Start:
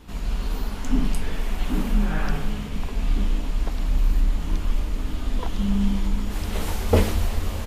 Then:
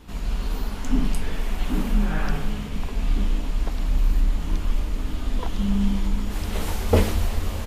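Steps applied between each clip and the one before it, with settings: no audible change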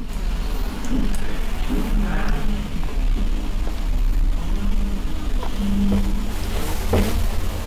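reverse echo 1014 ms -11.5 dB; waveshaping leveller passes 2; flange 0.42 Hz, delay 4.2 ms, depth 6 ms, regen +69%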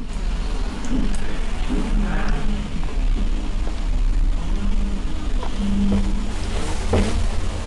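resampled via 22.05 kHz

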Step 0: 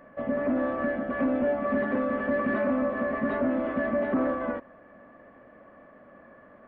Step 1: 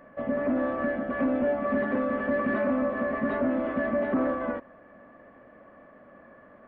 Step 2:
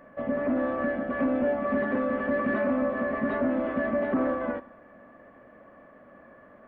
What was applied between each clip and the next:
no audible change
Schroeder reverb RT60 0.88 s, combs from 29 ms, DRR 18 dB

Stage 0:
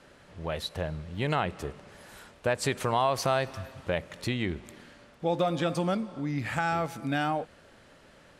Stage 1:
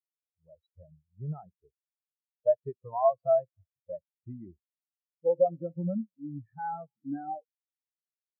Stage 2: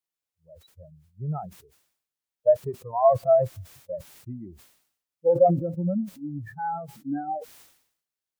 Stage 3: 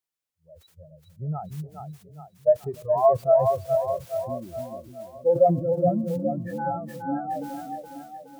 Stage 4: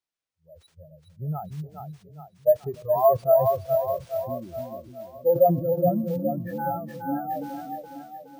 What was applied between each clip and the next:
treble shelf 6 kHz -11.5 dB; spectral contrast expander 4:1
decay stretcher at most 85 dB/s; trim +5 dB
two-band feedback delay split 310 Hz, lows 294 ms, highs 418 ms, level -5 dB; endings held to a fixed fall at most 590 dB/s
careless resampling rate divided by 3×, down filtered, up hold

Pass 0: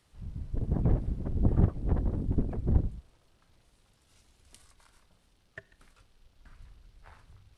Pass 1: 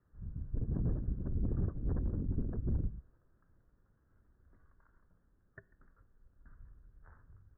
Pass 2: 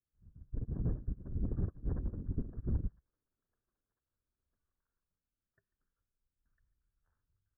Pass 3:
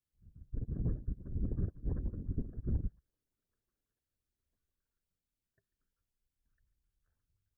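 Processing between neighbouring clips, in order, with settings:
steep low-pass 1.7 kHz 72 dB/octave; peaking EQ 780 Hz -10.5 dB 1 oct; peak limiter -22.5 dBFS, peak gain reduction 10.5 dB; trim -3 dB
feedback echo behind a high-pass 1002 ms, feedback 52%, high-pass 1.5 kHz, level -3.5 dB; upward expansion 2.5:1, over -46 dBFS; trim +2 dB
LFO notch saw up 5.7 Hz 680–1500 Hz

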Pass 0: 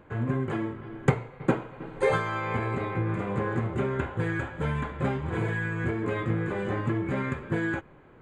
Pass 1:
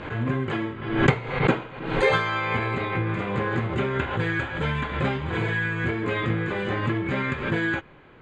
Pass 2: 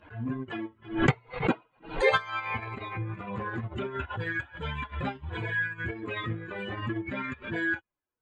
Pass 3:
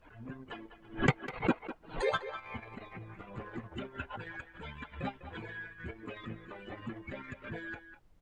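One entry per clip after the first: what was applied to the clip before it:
low-pass 5.9 kHz 12 dB/octave; peaking EQ 3.6 kHz +10.5 dB 2 oct; swell ahead of each attack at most 71 dB/s; trim +1.5 dB
expander on every frequency bin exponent 2; transient shaper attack -5 dB, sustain -9 dB; trim +2 dB
harmonic-percussive split harmonic -13 dB; speakerphone echo 200 ms, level -11 dB; added noise brown -61 dBFS; trim -2 dB

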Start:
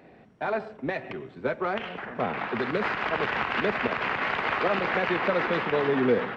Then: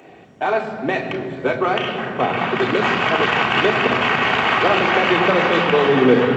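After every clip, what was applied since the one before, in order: tone controls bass 0 dB, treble +14 dB; reverberation RT60 3.6 s, pre-delay 3 ms, DRR 3.5 dB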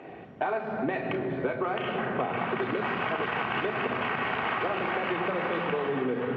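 low-pass 2.4 kHz 12 dB/octave; compression 10:1, threshold -26 dBFS, peak gain reduction 18 dB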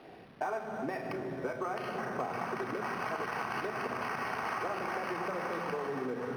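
bit crusher 8-bit; dynamic bell 1.1 kHz, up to +4 dB, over -44 dBFS, Q 0.8; decimation joined by straight lines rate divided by 6×; trim -8 dB

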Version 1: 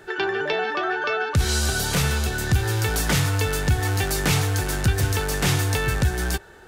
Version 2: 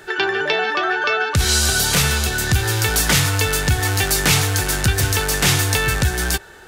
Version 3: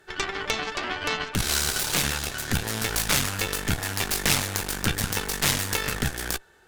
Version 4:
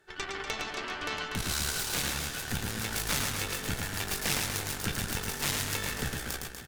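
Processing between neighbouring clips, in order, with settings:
tilt shelf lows -3.5 dB, about 1.3 kHz; trim +5.5 dB
Chebyshev shaper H 3 -11 dB, 4 -11 dB, 5 -35 dB, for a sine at -1 dBFS; trim -3 dB
reverse bouncing-ball echo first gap 110 ms, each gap 1.2×, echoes 5; trim -8.5 dB

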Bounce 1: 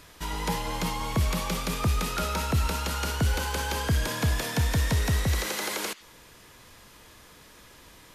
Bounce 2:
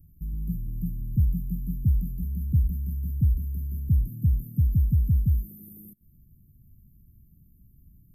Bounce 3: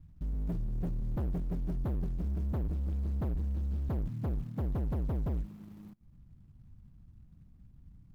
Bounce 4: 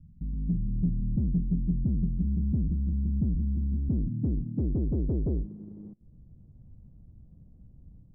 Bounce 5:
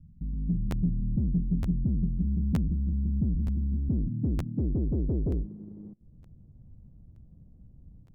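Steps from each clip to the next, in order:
inverse Chebyshev band-stop 740–5800 Hz, stop band 70 dB; trim +4 dB
median filter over 41 samples; overload inside the chain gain 30.5 dB
level rider gain up to 3.5 dB; low-pass sweep 210 Hz -> 540 Hz, 3.31–6.53 s
crackling interface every 0.92 s, samples 512, repeat, from 0.70 s

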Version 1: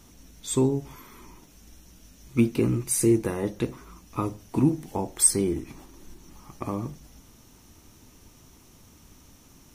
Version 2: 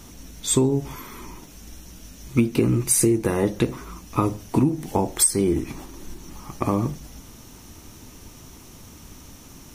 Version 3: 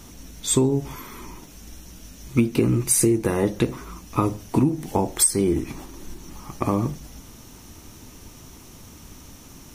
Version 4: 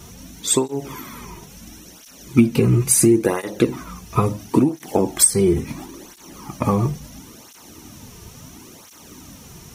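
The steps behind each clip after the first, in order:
compression 12:1, threshold -24 dBFS, peak gain reduction 11.5 dB; trim +9 dB
no audible change
cancelling through-zero flanger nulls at 0.73 Hz, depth 3.9 ms; trim +6.5 dB

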